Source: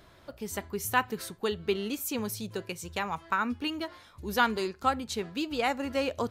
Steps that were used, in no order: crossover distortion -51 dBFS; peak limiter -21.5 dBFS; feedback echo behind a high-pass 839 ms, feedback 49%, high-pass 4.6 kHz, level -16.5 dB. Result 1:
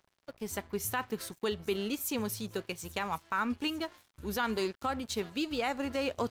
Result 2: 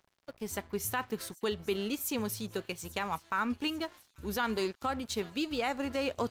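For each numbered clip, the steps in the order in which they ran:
feedback echo behind a high-pass > crossover distortion > peak limiter; crossover distortion > feedback echo behind a high-pass > peak limiter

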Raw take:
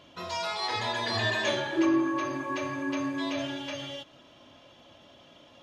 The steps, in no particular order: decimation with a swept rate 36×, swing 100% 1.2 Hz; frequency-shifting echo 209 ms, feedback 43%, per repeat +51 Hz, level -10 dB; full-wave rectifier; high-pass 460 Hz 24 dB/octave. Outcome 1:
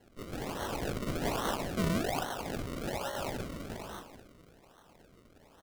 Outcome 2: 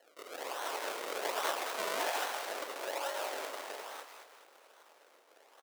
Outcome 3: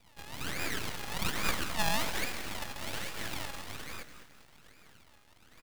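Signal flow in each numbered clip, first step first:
frequency-shifting echo > full-wave rectifier > high-pass > decimation with a swept rate; decimation with a swept rate > frequency-shifting echo > full-wave rectifier > high-pass; decimation with a swept rate > high-pass > frequency-shifting echo > full-wave rectifier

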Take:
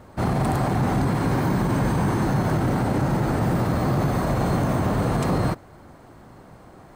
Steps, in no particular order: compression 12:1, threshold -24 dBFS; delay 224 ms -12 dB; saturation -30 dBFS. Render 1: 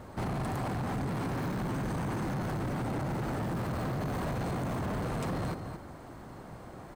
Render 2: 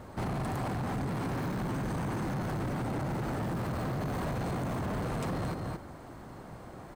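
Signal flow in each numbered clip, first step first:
compression > delay > saturation; delay > compression > saturation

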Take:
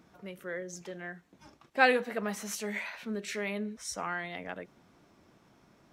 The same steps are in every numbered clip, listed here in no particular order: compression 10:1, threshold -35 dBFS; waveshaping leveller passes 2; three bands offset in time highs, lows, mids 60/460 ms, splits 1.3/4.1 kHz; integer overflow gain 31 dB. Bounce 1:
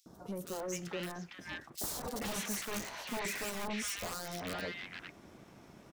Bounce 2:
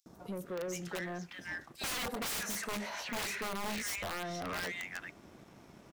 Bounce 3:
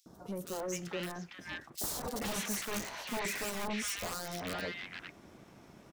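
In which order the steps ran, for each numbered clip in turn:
integer overflow > waveshaping leveller > compression > three bands offset in time; three bands offset in time > integer overflow > waveshaping leveller > compression; integer overflow > compression > waveshaping leveller > three bands offset in time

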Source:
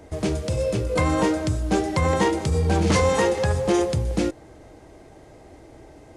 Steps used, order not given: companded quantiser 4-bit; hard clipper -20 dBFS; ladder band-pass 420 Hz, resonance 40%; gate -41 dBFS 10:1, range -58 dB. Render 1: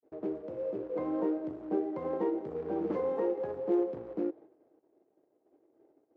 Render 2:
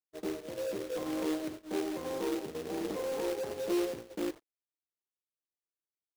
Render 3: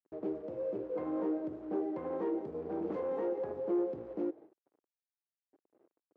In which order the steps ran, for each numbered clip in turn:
companded quantiser > gate > ladder band-pass > hard clipper; hard clipper > ladder band-pass > companded quantiser > gate; gate > companded quantiser > hard clipper > ladder band-pass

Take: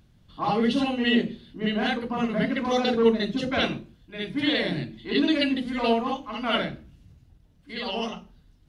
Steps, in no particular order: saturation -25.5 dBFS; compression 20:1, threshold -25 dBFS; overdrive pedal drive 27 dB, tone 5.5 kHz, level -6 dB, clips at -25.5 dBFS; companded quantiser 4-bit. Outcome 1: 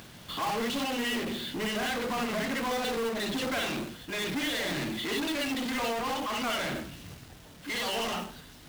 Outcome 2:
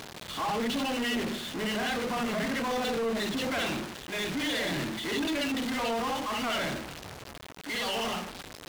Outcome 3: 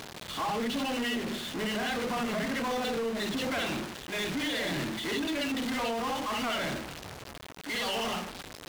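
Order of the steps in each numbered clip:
compression > overdrive pedal > saturation > companded quantiser; companded quantiser > overdrive pedal > saturation > compression; companded quantiser > overdrive pedal > compression > saturation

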